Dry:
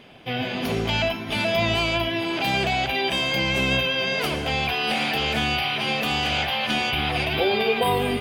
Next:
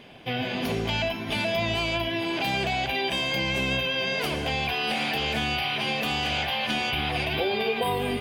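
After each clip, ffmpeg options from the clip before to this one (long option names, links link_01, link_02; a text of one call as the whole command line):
ffmpeg -i in.wav -af "acompressor=threshold=-26dB:ratio=2,bandreject=frequency=1300:width=15" out.wav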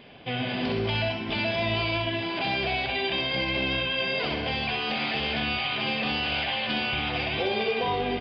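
ffmpeg -i in.wav -af "aresample=11025,volume=19dB,asoftclip=hard,volume=-19dB,aresample=44100,aecho=1:1:64|128|192|256|320|384|448:0.447|0.241|0.13|0.0703|0.038|0.0205|0.0111,volume=-1.5dB" out.wav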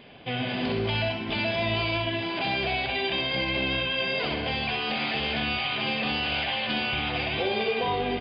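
ffmpeg -i in.wav -af "aresample=11025,aresample=44100" out.wav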